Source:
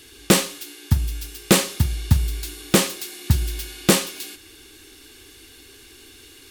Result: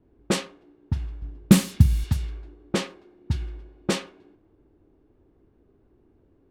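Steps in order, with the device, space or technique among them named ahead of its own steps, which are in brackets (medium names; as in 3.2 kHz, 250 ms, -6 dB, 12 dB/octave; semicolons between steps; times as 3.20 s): 1.22–2.04 s: resonant low shelf 300 Hz +11 dB, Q 1.5; cassette deck with a dynamic noise filter (white noise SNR 23 dB; level-controlled noise filter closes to 320 Hz, open at -9 dBFS); trim -7.5 dB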